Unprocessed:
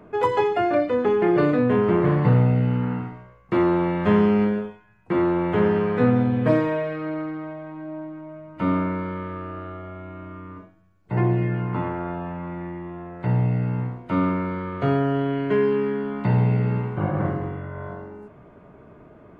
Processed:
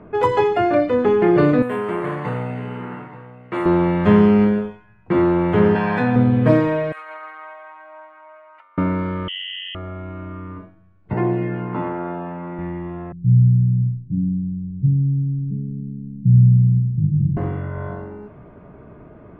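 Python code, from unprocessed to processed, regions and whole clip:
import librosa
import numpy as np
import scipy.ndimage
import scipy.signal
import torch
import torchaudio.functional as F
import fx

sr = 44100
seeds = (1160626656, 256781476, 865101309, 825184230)

y = fx.chain(x, sr, fx.highpass(hz=930.0, slope=6),
    fx.echo_single(ms=878, db=-15.5),
    fx.resample_linear(factor=4), at=(1.62, 3.66))
y = fx.chain(y, sr, fx.highpass(hz=490.0, slope=6),
    fx.comb(ms=1.2, depth=0.63),
    fx.env_flatten(amount_pct=70), at=(5.75, 6.16))
y = fx.chain(y, sr, fx.highpass(hz=860.0, slope=24),
    fx.over_compress(threshold_db=-40.0, ratio=-0.5),
    fx.resample_linear(factor=4), at=(6.92, 8.78))
y = fx.chain(y, sr, fx.envelope_sharpen(power=2.0),
    fx.freq_invert(carrier_hz=3200),
    fx.transformer_sat(knee_hz=840.0), at=(9.28, 9.75))
y = fx.chain(y, sr, fx.highpass(hz=220.0, slope=12),
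    fx.high_shelf(hz=2400.0, db=-6.5), at=(11.13, 12.59))
y = fx.chain(y, sr, fx.cheby2_lowpass(hz=810.0, order=4, stop_db=70),
    fx.comb(ms=6.4, depth=0.56), at=(13.12, 17.37))
y = fx.env_lowpass(y, sr, base_hz=2700.0, full_db=-20.0)
y = fx.low_shelf(y, sr, hz=200.0, db=5.5)
y = F.gain(torch.from_numpy(y), 3.0).numpy()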